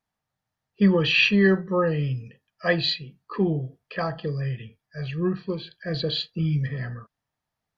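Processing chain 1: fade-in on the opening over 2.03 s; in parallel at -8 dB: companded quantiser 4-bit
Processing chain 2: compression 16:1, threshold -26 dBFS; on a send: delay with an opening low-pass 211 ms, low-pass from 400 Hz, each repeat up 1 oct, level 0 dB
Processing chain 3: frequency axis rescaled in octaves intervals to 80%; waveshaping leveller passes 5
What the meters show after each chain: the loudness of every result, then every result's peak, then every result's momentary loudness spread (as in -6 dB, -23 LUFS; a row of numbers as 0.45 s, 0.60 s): -24.0 LUFS, -29.0 LUFS, -15.0 LUFS; -7.0 dBFS, -14.5 dBFS, -9.0 dBFS; 11 LU, 4 LU, 9 LU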